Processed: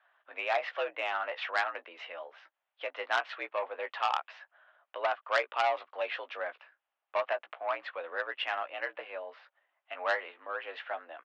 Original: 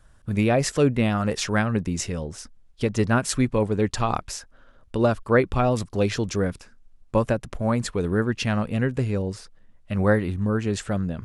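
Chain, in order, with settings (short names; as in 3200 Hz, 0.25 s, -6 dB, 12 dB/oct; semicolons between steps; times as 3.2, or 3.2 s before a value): doubler 16 ms -8 dB; mistuned SSB +69 Hz 600–3100 Hz; core saturation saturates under 2100 Hz; gain -3 dB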